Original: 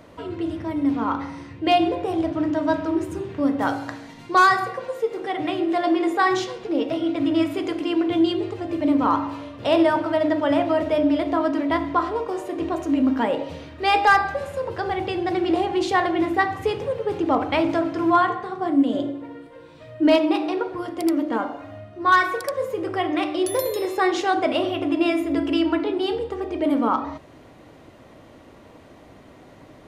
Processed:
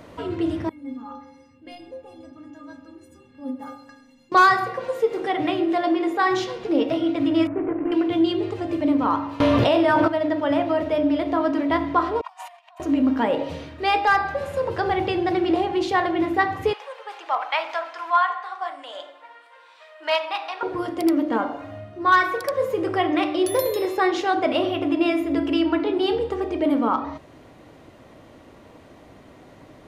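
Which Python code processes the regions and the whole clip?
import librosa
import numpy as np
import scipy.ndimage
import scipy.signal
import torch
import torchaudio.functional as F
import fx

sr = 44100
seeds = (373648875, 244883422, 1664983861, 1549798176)

y = fx.chain(x, sr, fx.low_shelf(hz=190.0, db=8.5),
    fx.stiff_resonator(f0_hz=250.0, decay_s=0.5, stiffness=0.03), at=(0.69, 4.32))
y = fx.chain(y, sr, fx.cvsd(bps=16000),
    fx.bessel_lowpass(hz=1200.0, order=6), at=(7.47, 7.92))
y = fx.chain(y, sr, fx.doubler(ms=17.0, db=-8.0),
    fx.env_flatten(amount_pct=100), at=(9.4, 10.08))
y = fx.chain(y, sr, fx.over_compress(threshold_db=-33.0, ratio=-0.5),
    fx.cheby_ripple_highpass(hz=670.0, ripple_db=6), at=(12.21, 12.8))
y = fx.chain(y, sr, fx.highpass(hz=800.0, slope=24),
    fx.high_shelf(hz=7900.0, db=-7.0), at=(16.73, 20.63))
y = fx.dynamic_eq(y, sr, hz=8200.0, q=1.4, threshold_db=-52.0, ratio=4.0, max_db=-6)
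y = fx.rider(y, sr, range_db=3, speed_s=0.5)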